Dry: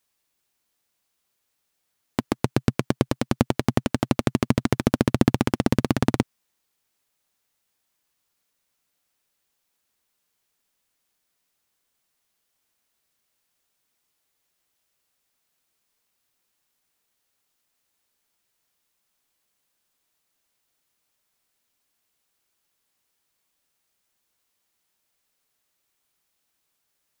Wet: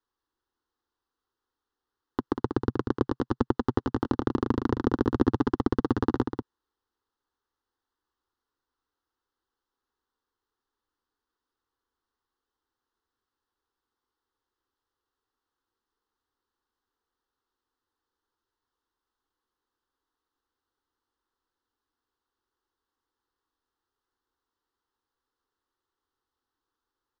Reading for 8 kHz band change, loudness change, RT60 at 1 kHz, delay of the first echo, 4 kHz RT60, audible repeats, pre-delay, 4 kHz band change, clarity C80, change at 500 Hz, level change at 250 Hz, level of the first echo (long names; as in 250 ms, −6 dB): below −20 dB, −4.0 dB, no reverb audible, 190 ms, no reverb audible, 1, no reverb audible, −12.5 dB, no reverb audible, −2.0 dB, −3.5 dB, −7.0 dB